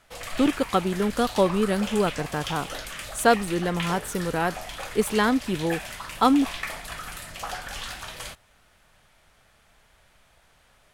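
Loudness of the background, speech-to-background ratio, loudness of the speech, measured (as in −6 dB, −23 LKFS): −35.0 LKFS, 10.0 dB, −25.0 LKFS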